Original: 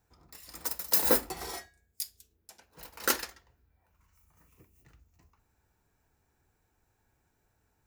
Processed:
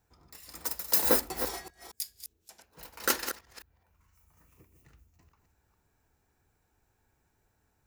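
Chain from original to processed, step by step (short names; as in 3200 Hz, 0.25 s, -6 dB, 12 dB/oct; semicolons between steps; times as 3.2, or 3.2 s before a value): reverse delay 0.213 s, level -9 dB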